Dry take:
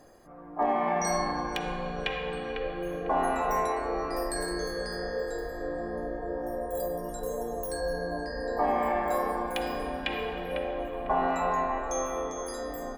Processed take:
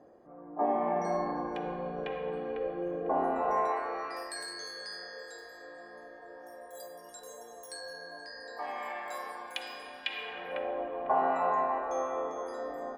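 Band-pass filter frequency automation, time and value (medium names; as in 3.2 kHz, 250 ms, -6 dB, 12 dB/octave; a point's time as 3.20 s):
band-pass filter, Q 0.72
3.34 s 410 Hz
3.83 s 1.3 kHz
4.48 s 4 kHz
10.13 s 4 kHz
10.71 s 780 Hz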